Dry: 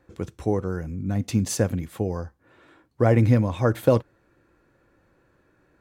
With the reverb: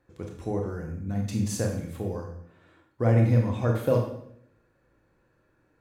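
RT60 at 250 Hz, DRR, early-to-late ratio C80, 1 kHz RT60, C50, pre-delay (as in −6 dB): 0.80 s, 1.0 dB, 8.0 dB, 0.65 s, 5.0 dB, 24 ms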